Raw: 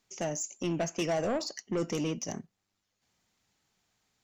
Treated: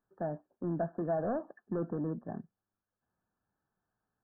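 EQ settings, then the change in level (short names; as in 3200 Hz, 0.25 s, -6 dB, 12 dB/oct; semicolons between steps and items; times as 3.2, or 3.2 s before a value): brick-wall FIR low-pass 1800 Hz; dynamic EQ 710 Hz, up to +6 dB, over -47 dBFS, Q 4.2; dynamic EQ 190 Hz, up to +5 dB, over -45 dBFS, Q 0.83; -6.0 dB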